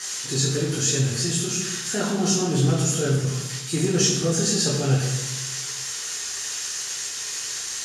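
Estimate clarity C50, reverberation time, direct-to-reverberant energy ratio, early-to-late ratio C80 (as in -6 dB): 3.0 dB, 1.1 s, -4.0 dB, 5.5 dB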